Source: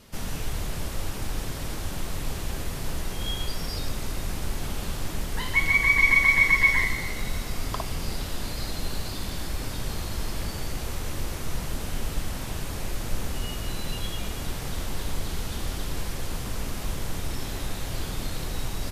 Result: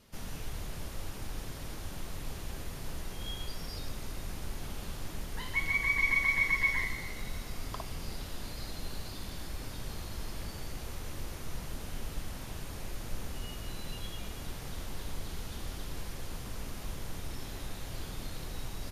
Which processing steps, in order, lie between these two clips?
notch 7800 Hz, Q 16; gain -9 dB

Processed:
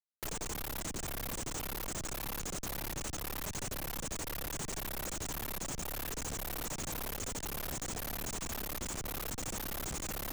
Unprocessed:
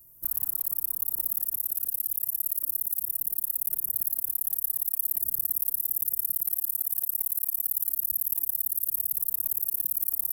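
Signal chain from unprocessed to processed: trilling pitch shifter -10.5 st, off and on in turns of 0.266 s; Schmitt trigger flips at -35 dBFS; three-band squash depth 40%; gain -8 dB

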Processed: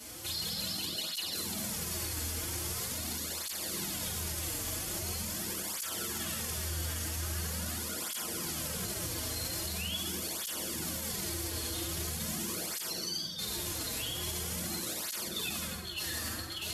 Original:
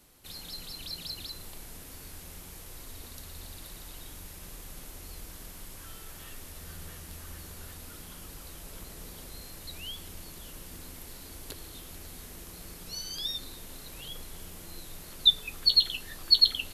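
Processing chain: dynamic EQ 4100 Hz, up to +5 dB, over -42 dBFS, Q 2.9; negative-ratio compressor -42 dBFS, ratio -0.5; HPF 78 Hz; bell 6000 Hz +6.5 dB 1.8 oct; notch 3900 Hz, Q 14; reverb RT60 1.3 s, pre-delay 5 ms, DRR -2 dB; limiter -30.5 dBFS, peak gain reduction 11.5 dB; tape flanging out of phase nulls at 0.43 Hz, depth 5.7 ms; gain +6.5 dB

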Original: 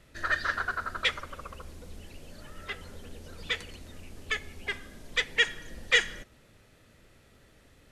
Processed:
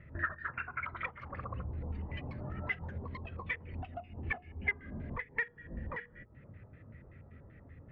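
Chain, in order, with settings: tracing distortion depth 0.22 ms; HPF 68 Hz 12 dB/oct; low shelf 250 Hz +10.5 dB; notches 60/120/180/240/300/360/420/480 Hz; echoes that change speed 0.375 s, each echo +7 st, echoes 3, each echo -6 dB; compressor 20:1, threshold -42 dBFS, peak gain reduction 25.5 dB; LFO low-pass square 5.2 Hz 980–2100 Hz; spectral expander 1.5:1; gain +6 dB

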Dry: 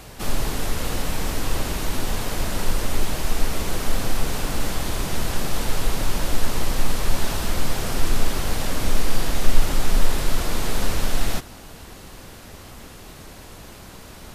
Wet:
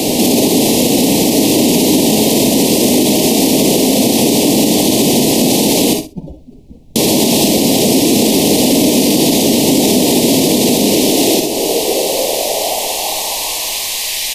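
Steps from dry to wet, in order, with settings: 5.93–6.96 spectral contrast raised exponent 2.9; HPF 55 Hz 24 dB/oct; compressor 3:1, threshold -37 dBFS, peak gain reduction 10.5 dB; high-pass sweep 250 Hz -> 1600 Hz, 10.82–14.22; added noise brown -71 dBFS; Butterworth band-stop 1400 Hz, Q 0.68; feedback echo 60 ms, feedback 17%, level -10.5 dB; non-linear reverb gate 90 ms rising, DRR 7.5 dB; maximiser +29.5 dB; gain -1 dB

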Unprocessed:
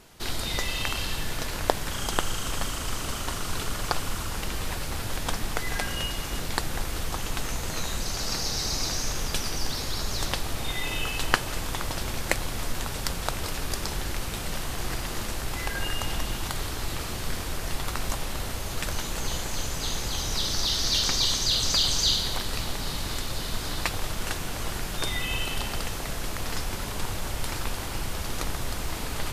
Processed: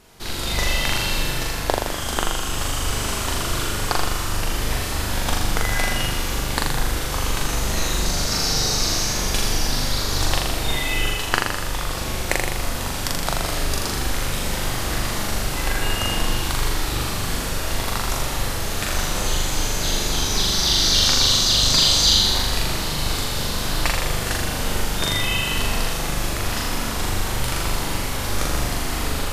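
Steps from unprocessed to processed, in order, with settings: AGC gain up to 4 dB; on a send: flutter echo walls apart 7 m, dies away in 1.1 s

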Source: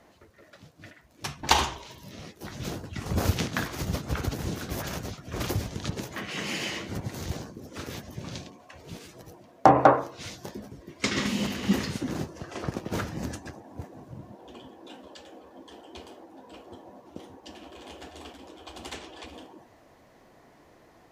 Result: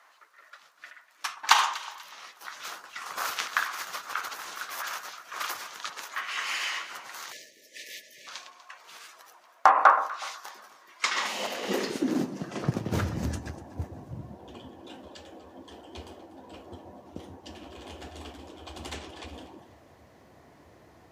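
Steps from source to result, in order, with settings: echo with dull and thin repeats by turns 0.122 s, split 1300 Hz, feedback 56%, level -12 dB; spectral delete 7.32–8.27, 660–1700 Hz; high-pass sweep 1200 Hz -> 75 Hz, 10.97–13.14

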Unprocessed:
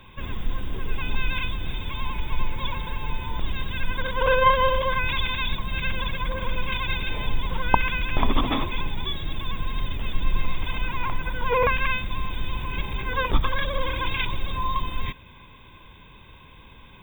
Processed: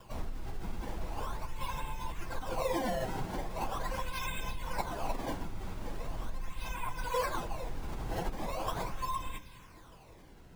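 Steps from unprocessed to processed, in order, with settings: decimation with a swept rate 21×, swing 160% 0.25 Hz; reverb RT60 0.80 s, pre-delay 6 ms, DRR 14.5 dB; compressor 5:1, threshold -26 dBFS, peak gain reduction 14 dB; notches 50/100/150/200/250/300/350/400/450 Hz; dynamic EQ 790 Hz, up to +8 dB, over -49 dBFS, Q 1.3; plain phase-vocoder stretch 0.62×; gain -2.5 dB

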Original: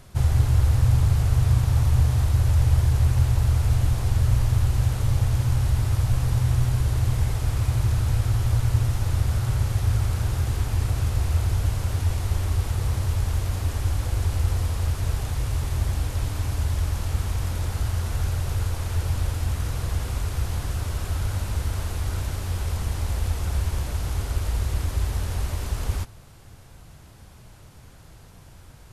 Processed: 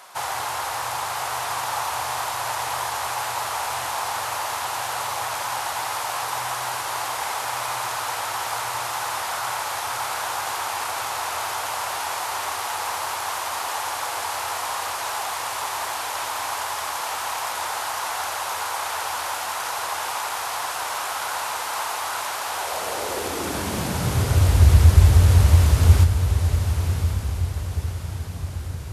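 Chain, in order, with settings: high-pass sweep 890 Hz -> 78 Hz, 22.47–24.65; diffused feedback echo 1.086 s, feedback 47%, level -7 dB; gain +8 dB

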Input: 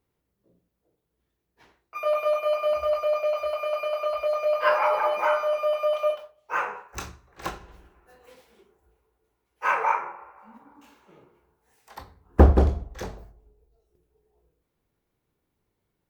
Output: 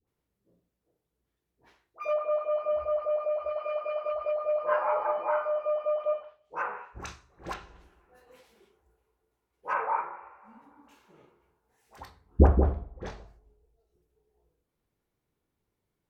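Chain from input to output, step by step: treble ducked by the level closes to 1300 Hz, closed at -23 dBFS; dispersion highs, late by 75 ms, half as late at 820 Hz; gain -4 dB

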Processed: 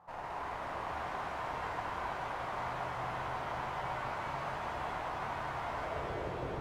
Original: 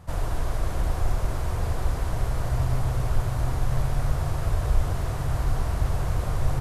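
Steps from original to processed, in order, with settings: band-pass sweep 920 Hz -> 390 Hz, 5.61–6.14; one-sided clip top -45.5 dBFS; shimmer reverb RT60 3.9 s, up +7 st, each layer -8 dB, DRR -5 dB; gain -1 dB

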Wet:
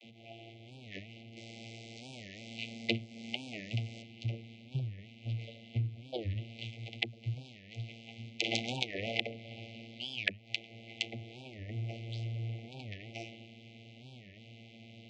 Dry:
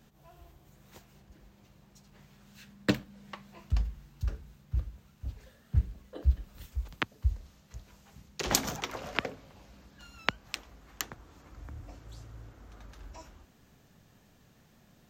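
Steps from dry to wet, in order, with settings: bell 2900 Hz +14 dB 1.4 oct; 1.36–4.02 requantised 8-bit, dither triangular; LPF 3700 Hz 12 dB/oct; vocoder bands 32, saw 114 Hz; brick-wall FIR band-stop 800–2000 Hz; tilt +2.5 dB/oct; compressor 4:1, threshold -42 dBFS, peak gain reduction 16 dB; record warp 45 rpm, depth 250 cents; gain +10 dB

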